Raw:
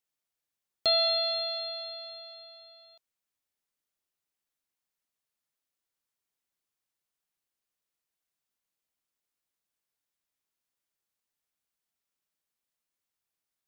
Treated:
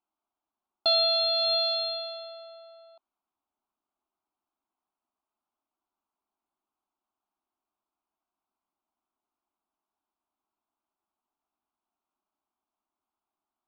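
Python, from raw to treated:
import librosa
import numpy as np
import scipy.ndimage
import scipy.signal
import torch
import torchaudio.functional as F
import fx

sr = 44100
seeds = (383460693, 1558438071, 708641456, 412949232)

p1 = scipy.signal.sosfilt(scipy.signal.butter(2, 3100.0, 'lowpass', fs=sr, output='sos'), x)
p2 = fx.env_lowpass(p1, sr, base_hz=1200.0, full_db=-34.0)
p3 = fx.tilt_eq(p2, sr, slope=2.5)
p4 = fx.over_compress(p3, sr, threshold_db=-35.0, ratio=-0.5)
p5 = p3 + F.gain(torch.from_numpy(p4), -1.5).numpy()
p6 = fx.fixed_phaser(p5, sr, hz=500.0, stages=6)
y = F.gain(torch.from_numpy(p6), 5.0).numpy()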